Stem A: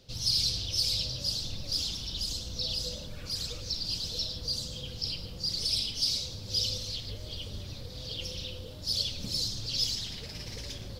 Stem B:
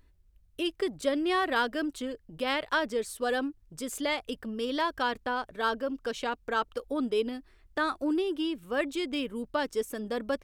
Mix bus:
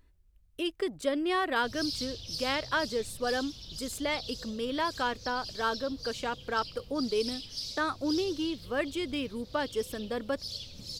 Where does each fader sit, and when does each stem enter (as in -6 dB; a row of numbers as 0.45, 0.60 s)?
-9.0, -1.5 dB; 1.55, 0.00 s